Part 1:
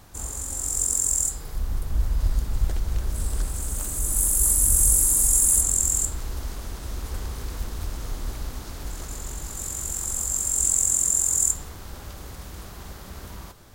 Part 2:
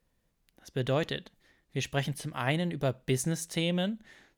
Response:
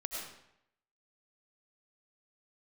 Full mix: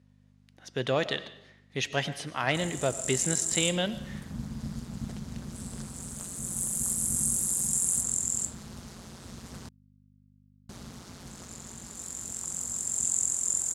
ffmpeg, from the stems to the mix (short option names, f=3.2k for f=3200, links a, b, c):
-filter_complex "[0:a]highshelf=f=5.2k:g=7,tremolo=f=180:d=0.788,adelay=2400,volume=-8dB,asplit=3[a][b][c];[a]atrim=end=9.69,asetpts=PTS-STARTPTS,afade=t=out:st=9.686:d=0.004:c=hsin[d];[b]atrim=start=9.69:end=10.69,asetpts=PTS-STARTPTS,volume=0[e];[c]atrim=start=10.69,asetpts=PTS-STARTPTS,afade=t=in:d=0.004:c=hsin[f];[d][e][f]concat=n=3:v=0:a=1[g];[1:a]lowshelf=f=320:g=-9.5,asoftclip=type=tanh:threshold=-20.5dB,volume=1dB,asplit=2[h][i];[i]volume=-11.5dB[j];[2:a]atrim=start_sample=2205[k];[j][k]afir=irnorm=-1:irlink=0[l];[g][h][l]amix=inputs=3:normalize=0,dynaudnorm=f=250:g=3:m=3dB,aeval=exprs='val(0)+0.002*(sin(2*PI*50*n/s)+sin(2*PI*2*50*n/s)/2+sin(2*PI*3*50*n/s)/3+sin(2*PI*4*50*n/s)/4+sin(2*PI*5*50*n/s)/5)':c=same,highpass=100,lowpass=7.4k"